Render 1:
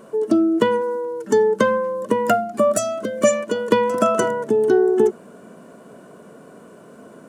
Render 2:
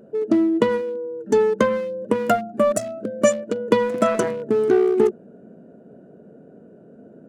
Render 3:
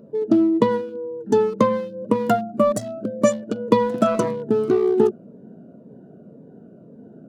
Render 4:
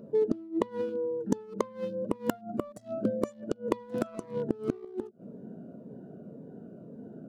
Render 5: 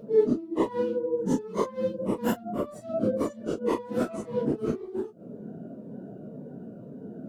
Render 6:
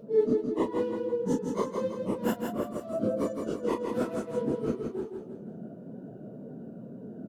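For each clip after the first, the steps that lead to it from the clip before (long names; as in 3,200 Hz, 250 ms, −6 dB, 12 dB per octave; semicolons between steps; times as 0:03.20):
adaptive Wiener filter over 41 samples
octave-band graphic EQ 125/250/1,000/2,000/4,000/8,000 Hz +7/+3/+7/−4/+4/−4 dB; phaser whose notches keep moving one way falling 1.9 Hz; level −1.5 dB
gate with flip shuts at −12 dBFS, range −26 dB; level −1.5 dB
random phases in long frames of 100 ms; level +4.5 dB
repeating echo 165 ms, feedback 44%, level −5 dB; level −3 dB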